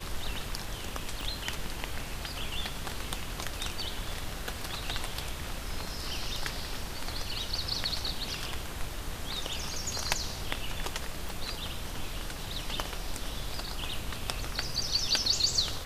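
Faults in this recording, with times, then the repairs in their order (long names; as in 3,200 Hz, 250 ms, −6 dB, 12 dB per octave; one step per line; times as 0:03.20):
0:01.21: click
0:11.29: click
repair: click removal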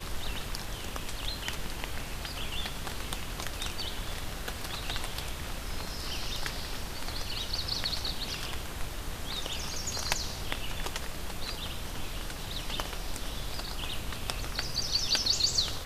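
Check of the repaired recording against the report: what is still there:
0:01.21: click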